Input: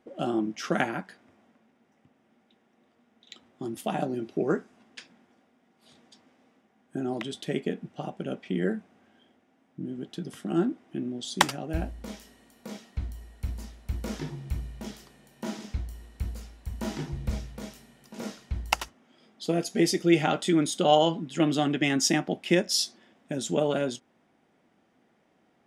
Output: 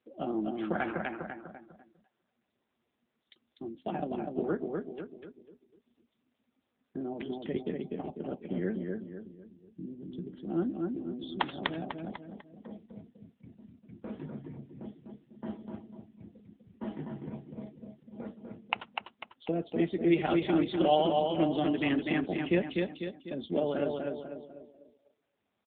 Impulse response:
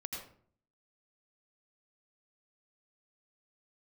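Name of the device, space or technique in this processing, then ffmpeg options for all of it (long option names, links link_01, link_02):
mobile call with aggressive noise cancelling: -filter_complex "[0:a]asettb=1/sr,asplit=3[link_01][link_02][link_03];[link_01]atrim=end=10.964[link_04];[link_02]atrim=start=10.96:end=11.37,asetpts=PTS-STARTPTS,afade=type=in:duration=0.004:curve=qsin,afade=type=out:start_time=0.406:duration=0.004:curve=qsin,highpass=frequency=200:poles=1[link_05];[link_03]atrim=start=11.366[link_06];[link_04][link_05]acrossfade=duration=0.004:curve1=hsin:curve2=qsin[link_07];[link_07][link_06]acrossfade=duration=0.004:curve1=qsin:curve2=hsin,highpass=frequency=150:width=0.5412,highpass=frequency=150:width=1.3066,aecho=1:1:248|496|744|992|1240|1488:0.668|0.314|0.148|0.0694|0.0326|0.0153,afftdn=noise_reduction=18:noise_floor=-42,volume=-4.5dB" -ar 8000 -c:a libopencore_amrnb -b:a 7950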